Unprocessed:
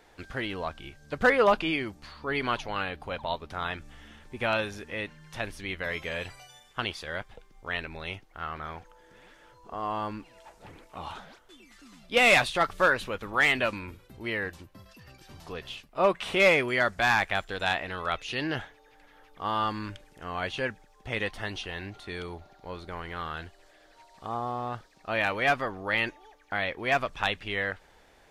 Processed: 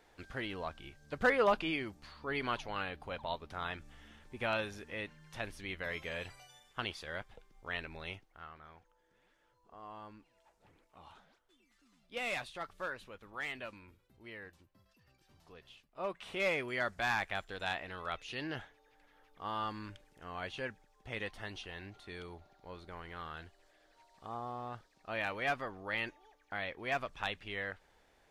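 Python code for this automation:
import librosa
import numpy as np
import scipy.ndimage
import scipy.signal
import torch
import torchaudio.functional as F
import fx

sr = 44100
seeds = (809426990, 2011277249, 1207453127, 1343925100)

y = fx.gain(x, sr, db=fx.line((8.1, -7.0), (8.59, -17.5), (15.75, -17.5), (16.84, -9.5)))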